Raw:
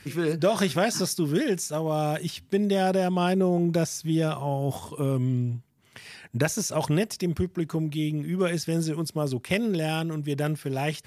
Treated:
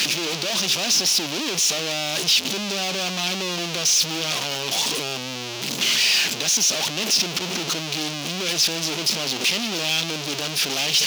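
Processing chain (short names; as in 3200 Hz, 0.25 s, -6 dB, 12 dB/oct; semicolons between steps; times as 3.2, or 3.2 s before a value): infinite clipping; HPF 180 Hz 24 dB/oct; band shelf 4000 Hz +13.5 dB; gain -2 dB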